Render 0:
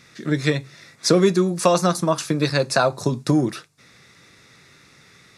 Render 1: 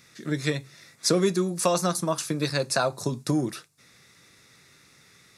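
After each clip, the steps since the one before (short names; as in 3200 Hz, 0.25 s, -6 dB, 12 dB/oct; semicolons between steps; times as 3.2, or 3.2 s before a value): high shelf 7900 Hz +12 dB; gain -6.5 dB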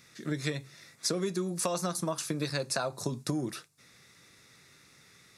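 compressor 6:1, threshold -25 dBFS, peak gain reduction 8 dB; gain -2.5 dB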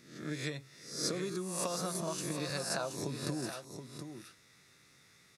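spectral swells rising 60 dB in 0.61 s; echo 0.724 s -8.5 dB; gain -7 dB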